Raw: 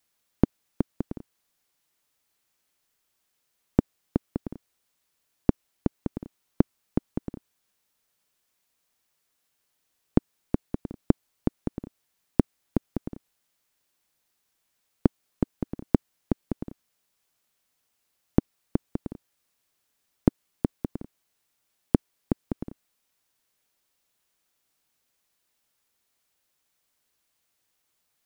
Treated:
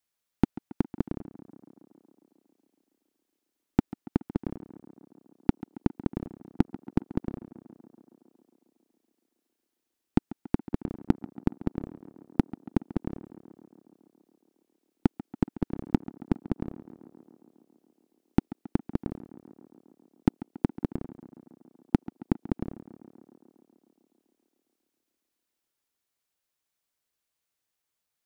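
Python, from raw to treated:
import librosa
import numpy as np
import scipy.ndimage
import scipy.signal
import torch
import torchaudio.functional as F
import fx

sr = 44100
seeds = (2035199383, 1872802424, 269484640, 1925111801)

p1 = fx.leveller(x, sr, passes=2)
p2 = p1 + fx.echo_tape(p1, sr, ms=138, feedback_pct=83, wet_db=-14.0, lp_hz=2200.0, drive_db=4.0, wow_cents=28, dry=0)
y = p2 * 10.0 ** (-5.0 / 20.0)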